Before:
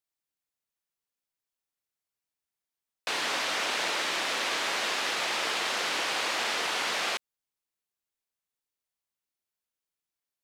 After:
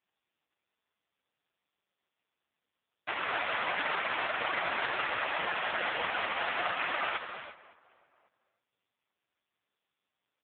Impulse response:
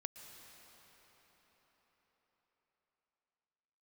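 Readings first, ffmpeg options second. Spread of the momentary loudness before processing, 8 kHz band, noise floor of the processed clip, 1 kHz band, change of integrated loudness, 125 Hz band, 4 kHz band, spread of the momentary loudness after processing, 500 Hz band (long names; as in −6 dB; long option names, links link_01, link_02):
2 LU, below −40 dB, below −85 dBFS, 0.0 dB, −3.5 dB, +1.5 dB, −9.0 dB, 7 LU, −1.5 dB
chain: -filter_complex "[0:a]highpass=frequency=420:poles=1,highshelf=frequency=2200:gain=-5,acrossover=split=3100[link_01][link_02];[link_02]acompressor=threshold=-46dB:ratio=4:attack=1:release=60[link_03];[link_01][link_03]amix=inputs=2:normalize=0,asplit=2[link_04][link_05];[link_05]adelay=555,lowpass=frequency=1700:poles=1,volume=-23dB,asplit=2[link_06][link_07];[link_07]adelay=555,lowpass=frequency=1700:poles=1,volume=0.31[link_08];[link_04][link_06][link_08]amix=inputs=3:normalize=0[link_09];[1:a]atrim=start_sample=2205,afade=type=out:start_time=0.27:duration=0.01,atrim=end_sample=12348,asetrate=26460,aresample=44100[link_10];[link_09][link_10]afir=irnorm=-1:irlink=0,volume=8.5dB" -ar 8000 -c:a libopencore_amrnb -b:a 4750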